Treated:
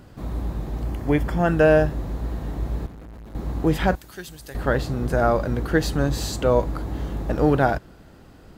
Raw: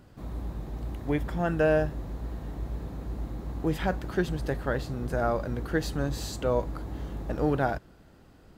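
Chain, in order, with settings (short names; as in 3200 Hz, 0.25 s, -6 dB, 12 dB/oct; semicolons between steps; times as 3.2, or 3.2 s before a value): 0.83–1.48 notch 3800 Hz, Q 7.9; 2.86–3.35 tube stage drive 46 dB, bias 0.6; 3.95–4.55 pre-emphasis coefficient 0.9; gain +7.5 dB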